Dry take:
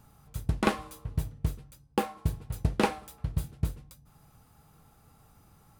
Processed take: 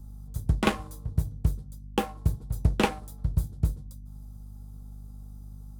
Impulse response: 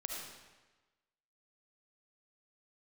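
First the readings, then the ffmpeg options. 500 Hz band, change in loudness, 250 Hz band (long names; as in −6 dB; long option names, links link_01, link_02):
+0.5 dB, +3.0 dB, +2.0 dB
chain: -filter_complex "[0:a]aeval=exprs='val(0)+0.00501*(sin(2*PI*50*n/s)+sin(2*PI*2*50*n/s)/2+sin(2*PI*3*50*n/s)/3+sin(2*PI*4*50*n/s)/4+sin(2*PI*5*50*n/s)/5)':channel_layout=same,equalizer=frequency=3300:width=1.7:gain=8,acrossover=split=160|4500[link_01][link_02][link_03];[link_02]adynamicsmooth=sensitivity=6.5:basefreq=720[link_04];[link_01][link_04][link_03]amix=inputs=3:normalize=0,lowshelf=frequency=140:gain=6"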